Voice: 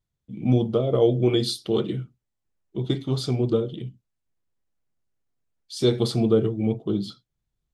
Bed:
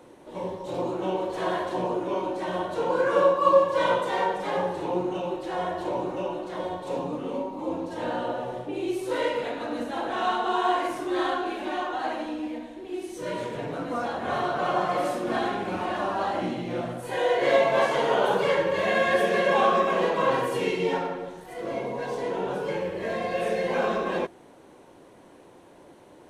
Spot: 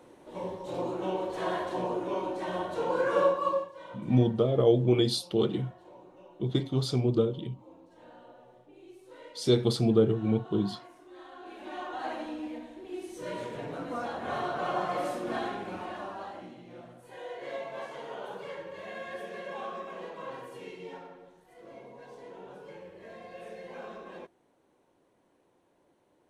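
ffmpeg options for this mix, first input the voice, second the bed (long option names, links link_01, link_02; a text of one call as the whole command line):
ffmpeg -i stem1.wav -i stem2.wav -filter_complex "[0:a]adelay=3650,volume=-3dB[link_01];[1:a]volume=13.5dB,afade=type=out:start_time=3.26:duration=0.46:silence=0.112202,afade=type=in:start_time=11.31:duration=0.8:silence=0.133352,afade=type=out:start_time=15.25:duration=1.23:silence=0.251189[link_02];[link_01][link_02]amix=inputs=2:normalize=0" out.wav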